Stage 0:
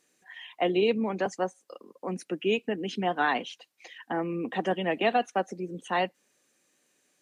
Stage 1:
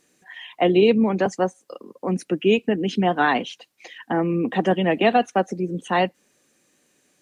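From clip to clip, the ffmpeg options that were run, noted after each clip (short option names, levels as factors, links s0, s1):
-af "lowshelf=f=280:g=8.5,volume=1.88"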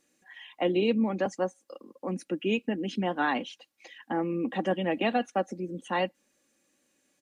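-af "aecho=1:1:3.6:0.43,volume=0.376"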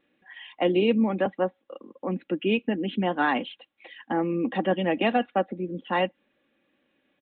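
-af "aresample=8000,aresample=44100,volume=1.5"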